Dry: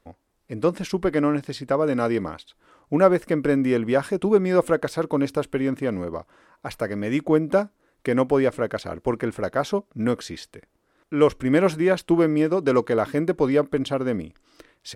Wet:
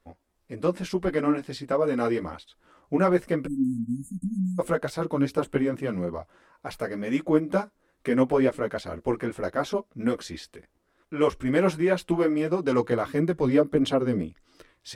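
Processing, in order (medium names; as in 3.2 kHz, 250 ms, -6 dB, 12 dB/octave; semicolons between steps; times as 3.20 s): spectral selection erased 3.45–4.59 s, 300–6400 Hz; chorus voices 6, 1.5 Hz, delay 14 ms, depth 3 ms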